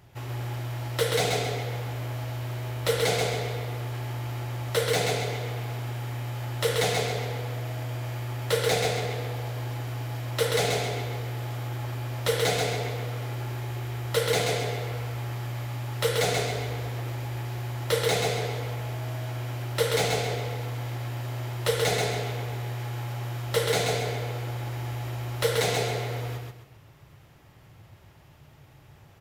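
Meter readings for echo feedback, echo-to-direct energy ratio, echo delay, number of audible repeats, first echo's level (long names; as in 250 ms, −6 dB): 31%, −3.0 dB, 132 ms, 4, −3.5 dB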